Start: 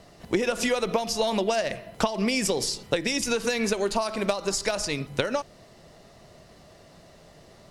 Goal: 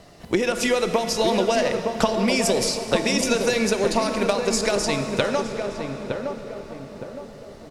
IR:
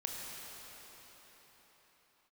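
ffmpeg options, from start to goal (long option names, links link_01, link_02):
-filter_complex "[0:a]asplit=2[link_01][link_02];[link_02]adelay=914,lowpass=frequency=1000:poles=1,volume=-4dB,asplit=2[link_03][link_04];[link_04]adelay=914,lowpass=frequency=1000:poles=1,volume=0.47,asplit=2[link_05][link_06];[link_06]adelay=914,lowpass=frequency=1000:poles=1,volume=0.47,asplit=2[link_07][link_08];[link_08]adelay=914,lowpass=frequency=1000:poles=1,volume=0.47,asplit=2[link_09][link_10];[link_10]adelay=914,lowpass=frequency=1000:poles=1,volume=0.47,asplit=2[link_11][link_12];[link_12]adelay=914,lowpass=frequency=1000:poles=1,volume=0.47[link_13];[link_01][link_03][link_05][link_07][link_09][link_11][link_13]amix=inputs=7:normalize=0,asplit=2[link_14][link_15];[1:a]atrim=start_sample=2205[link_16];[link_15][link_16]afir=irnorm=-1:irlink=0,volume=-5dB[link_17];[link_14][link_17]amix=inputs=2:normalize=0"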